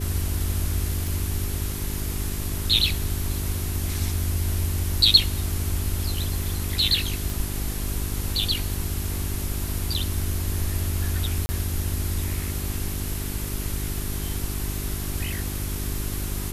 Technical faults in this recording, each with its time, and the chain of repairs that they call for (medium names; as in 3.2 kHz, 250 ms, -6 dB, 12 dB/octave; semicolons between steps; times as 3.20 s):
hum 50 Hz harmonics 8 -31 dBFS
1.07 s: pop
7.30 s: pop
11.46–11.49 s: dropout 30 ms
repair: de-click; de-hum 50 Hz, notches 8; interpolate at 11.46 s, 30 ms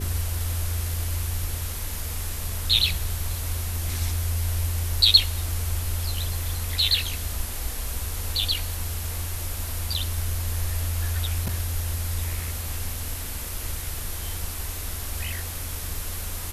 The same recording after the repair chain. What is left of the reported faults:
nothing left